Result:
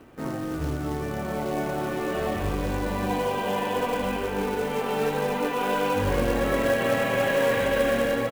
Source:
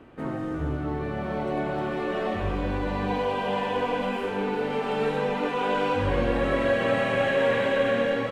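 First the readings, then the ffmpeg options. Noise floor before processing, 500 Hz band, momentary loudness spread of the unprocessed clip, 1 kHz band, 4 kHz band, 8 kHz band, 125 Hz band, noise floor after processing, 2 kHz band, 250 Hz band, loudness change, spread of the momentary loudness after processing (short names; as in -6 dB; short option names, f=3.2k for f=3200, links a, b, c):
-31 dBFS, +0.5 dB, 7 LU, +0.5 dB, +1.0 dB, n/a, +0.5 dB, -31 dBFS, 0.0 dB, +0.5 dB, +0.5 dB, 7 LU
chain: -filter_complex "[0:a]acrusher=bits=4:mode=log:mix=0:aa=0.000001,asplit=2[a][b];[b]adelay=1574,volume=-10dB,highshelf=f=4k:g=-35.4[c];[a][c]amix=inputs=2:normalize=0"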